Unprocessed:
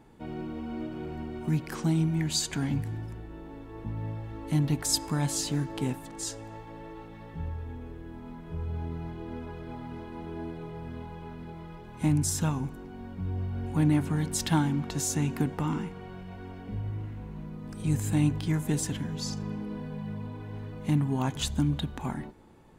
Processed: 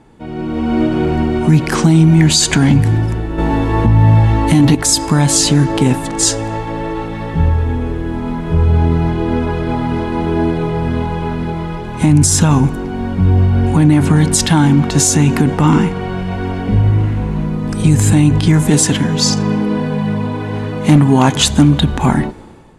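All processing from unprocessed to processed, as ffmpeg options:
ffmpeg -i in.wav -filter_complex "[0:a]asettb=1/sr,asplit=3[link_01][link_02][link_03];[link_01]atrim=end=3.384[link_04];[link_02]atrim=start=3.38:end=4.75,asetpts=PTS-STARTPTS,afade=type=in:duration=0.004:curve=qsin,afade=type=out:start_time=1.366:duration=0.004:curve=qsin,acontrast=84,asplit=2[link_05][link_06];[link_06]adelay=17,volume=-5dB[link_07];[link_05][link_07]amix=inputs=2:normalize=0,atrim=end_sample=60417[link_08];[link_03]atrim=start=4.746[link_09];[link_04][link_08]acrossfade=duration=0.004:curve1=hsin:curve2=qsin[link_10];[link_10][link_09]acrossfade=duration=0.004:curve1=qsin:curve2=hsin,asettb=1/sr,asplit=3[link_11][link_12][link_13];[link_11]atrim=end=18.704[link_14];[link_12]atrim=start=18.7:end=21.79,asetpts=PTS-STARTPTS,afade=type=in:duration=0.004:curve=qsin,afade=type=out:start_time=3.086:duration=0.004:curve=qsin,highpass=frequency=180:poles=1,asoftclip=type=hard:threshold=-22.5dB[link_15];[link_13]atrim=start=21.786[link_16];[link_14][link_15]acrossfade=duration=0.004:curve1=hsin:curve2=qsin[link_17];[link_17][link_16]acrossfade=duration=0.004:curve1=qsin:curve2=hsin,lowpass=frequency=11000:width=0.5412,lowpass=frequency=11000:width=1.3066,dynaudnorm=framelen=160:gausssize=7:maxgain=13dB,alimiter=level_in=10.5dB:limit=-1dB:release=50:level=0:latency=1,volume=-1dB" out.wav

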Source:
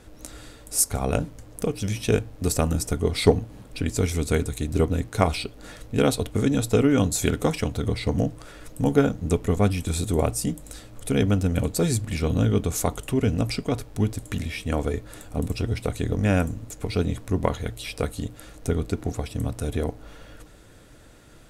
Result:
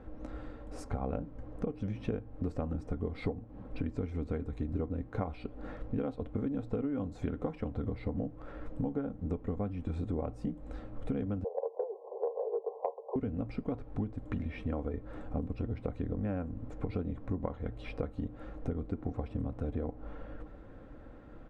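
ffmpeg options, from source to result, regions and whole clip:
ffmpeg -i in.wav -filter_complex "[0:a]asettb=1/sr,asplit=3[link_01][link_02][link_03];[link_01]atrim=end=11.444[link_04];[link_02]atrim=start=11.44:end=13.16,asetpts=PTS-STARTPTS,afade=type=in:duration=0.004:curve=qsin,afade=type=out:start_time=1.716:duration=0.004:curve=qsin,asuperpass=centerf=640:order=20:qfactor=1,acontrast=38,asplit=2[link_05][link_06];[link_06]adelay=13,volume=-9dB[link_07];[link_05][link_07]amix=inputs=2:normalize=0,atrim=end_sample=75852[link_08];[link_03]atrim=start=13.156[link_09];[link_04][link_08]acrossfade=duration=0.004:curve1=hsin:curve2=qsin[link_10];[link_10][link_09]acrossfade=duration=0.004:curve1=qsin:curve2=hsin,lowpass=1200,aecho=1:1:3.8:0.35,acompressor=threshold=-31dB:ratio=10" out.wav

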